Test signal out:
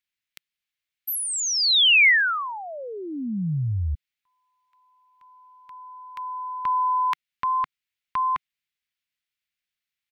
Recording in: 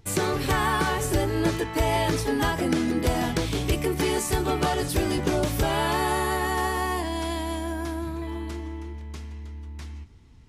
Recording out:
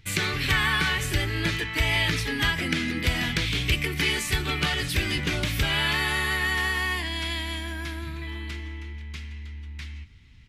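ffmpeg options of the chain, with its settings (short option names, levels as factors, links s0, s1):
-af "firequalizer=gain_entry='entry(150,0);entry(350,-9);entry(760,-11);entry(1400,1);entry(2100,10);entry(3600,7);entry(5600,0);entry(9100,-4);entry(13000,-2)':delay=0.05:min_phase=1"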